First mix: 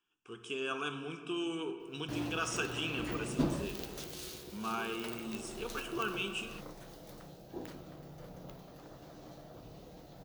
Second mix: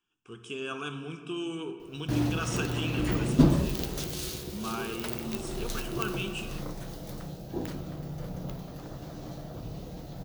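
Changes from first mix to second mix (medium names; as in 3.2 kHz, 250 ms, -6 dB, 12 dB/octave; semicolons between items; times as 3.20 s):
background +7.0 dB; master: add tone controls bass +8 dB, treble +2 dB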